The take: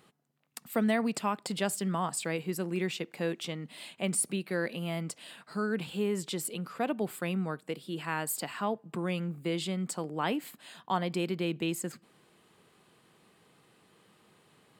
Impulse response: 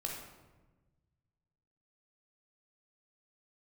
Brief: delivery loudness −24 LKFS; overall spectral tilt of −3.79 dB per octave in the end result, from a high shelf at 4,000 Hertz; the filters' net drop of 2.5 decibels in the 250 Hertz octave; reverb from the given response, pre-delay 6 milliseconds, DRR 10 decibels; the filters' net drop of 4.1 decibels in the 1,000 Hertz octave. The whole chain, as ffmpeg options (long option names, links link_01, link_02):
-filter_complex "[0:a]equalizer=frequency=250:width_type=o:gain=-3.5,equalizer=frequency=1000:width_type=o:gain=-5.5,highshelf=frequency=4000:gain=5.5,asplit=2[link_01][link_02];[1:a]atrim=start_sample=2205,adelay=6[link_03];[link_02][link_03]afir=irnorm=-1:irlink=0,volume=-11dB[link_04];[link_01][link_04]amix=inputs=2:normalize=0,volume=9dB"